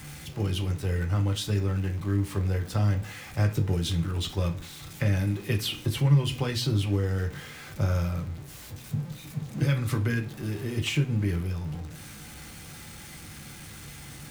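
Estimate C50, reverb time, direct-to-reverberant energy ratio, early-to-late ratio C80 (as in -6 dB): 14.0 dB, 0.40 s, 3.0 dB, 20.5 dB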